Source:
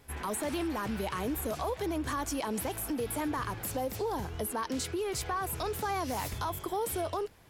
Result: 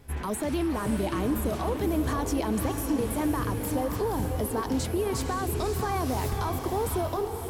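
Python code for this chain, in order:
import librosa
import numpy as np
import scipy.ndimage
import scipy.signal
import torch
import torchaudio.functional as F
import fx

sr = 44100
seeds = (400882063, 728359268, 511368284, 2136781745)

y = fx.low_shelf(x, sr, hz=410.0, db=9.0)
y = fx.echo_diffused(y, sr, ms=542, feedback_pct=46, wet_db=-6)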